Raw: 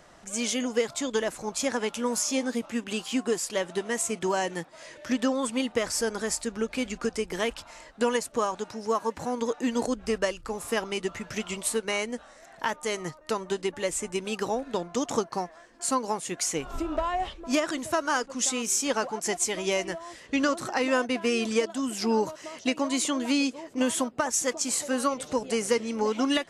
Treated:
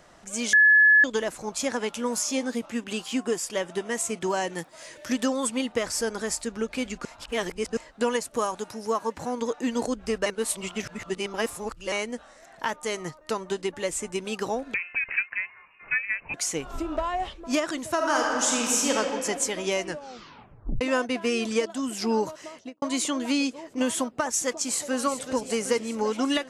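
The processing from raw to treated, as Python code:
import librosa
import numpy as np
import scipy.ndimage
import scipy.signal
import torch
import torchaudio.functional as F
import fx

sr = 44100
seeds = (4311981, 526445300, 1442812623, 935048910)

y = fx.notch(x, sr, hz=4100.0, q=8.1, at=(3.18, 3.92))
y = fx.high_shelf(y, sr, hz=7600.0, db=12.0, at=(4.58, 5.49))
y = fx.peak_eq(y, sr, hz=11000.0, db=13.5, octaves=0.53, at=(8.31, 8.9))
y = fx.freq_invert(y, sr, carrier_hz=2800, at=(14.74, 16.34))
y = fx.reverb_throw(y, sr, start_s=17.95, length_s=1.0, rt60_s=2.3, drr_db=-2.0)
y = fx.studio_fade_out(y, sr, start_s=22.42, length_s=0.4)
y = fx.echo_throw(y, sr, start_s=24.5, length_s=0.52, ms=380, feedback_pct=65, wet_db=-10.0)
y = fx.edit(y, sr, fx.bleep(start_s=0.53, length_s=0.51, hz=1710.0, db=-13.0),
    fx.reverse_span(start_s=7.05, length_s=0.72),
    fx.reverse_span(start_s=10.26, length_s=1.66),
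    fx.tape_stop(start_s=19.87, length_s=0.94), tone=tone)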